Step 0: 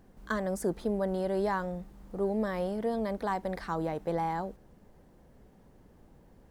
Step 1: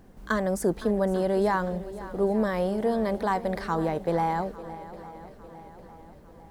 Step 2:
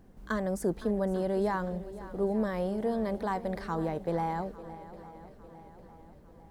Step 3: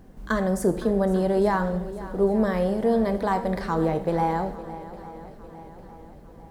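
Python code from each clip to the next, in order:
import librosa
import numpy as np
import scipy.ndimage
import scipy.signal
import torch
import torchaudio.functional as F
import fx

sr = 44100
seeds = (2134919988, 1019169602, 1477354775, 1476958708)

y1 = fx.echo_swing(x, sr, ms=852, ratio=1.5, feedback_pct=46, wet_db=-16)
y1 = y1 * 10.0 ** (5.5 / 20.0)
y2 = fx.low_shelf(y1, sr, hz=430.0, db=4.0)
y2 = y2 * 10.0 ** (-7.0 / 20.0)
y3 = fx.rev_plate(y2, sr, seeds[0], rt60_s=0.79, hf_ratio=0.85, predelay_ms=0, drr_db=8.5)
y3 = y3 * 10.0 ** (7.0 / 20.0)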